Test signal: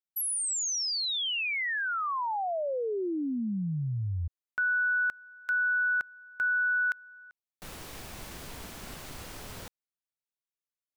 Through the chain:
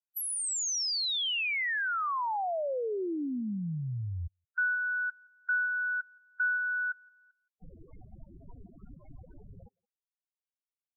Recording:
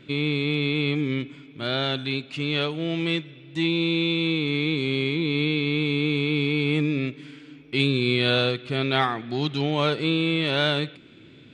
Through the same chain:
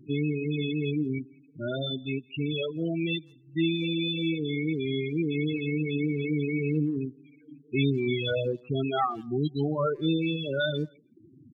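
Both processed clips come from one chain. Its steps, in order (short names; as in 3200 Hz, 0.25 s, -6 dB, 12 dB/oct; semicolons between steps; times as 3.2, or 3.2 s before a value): loudest bins only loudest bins 8; speakerphone echo 0.17 s, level -17 dB; reverb removal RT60 0.94 s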